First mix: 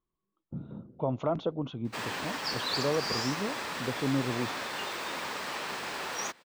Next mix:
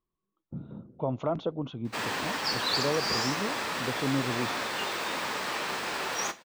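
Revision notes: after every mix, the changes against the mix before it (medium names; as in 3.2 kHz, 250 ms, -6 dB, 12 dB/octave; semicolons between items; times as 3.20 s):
reverb: on, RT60 0.30 s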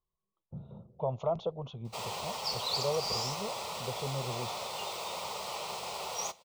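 background: send -8.5 dB; master: add static phaser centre 690 Hz, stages 4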